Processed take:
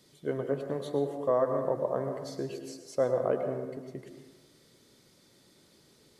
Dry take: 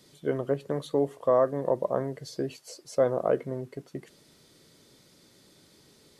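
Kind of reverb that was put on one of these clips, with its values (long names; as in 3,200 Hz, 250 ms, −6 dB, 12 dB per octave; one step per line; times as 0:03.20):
dense smooth reverb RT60 1.2 s, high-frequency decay 0.45×, pre-delay 90 ms, DRR 5.5 dB
level −4 dB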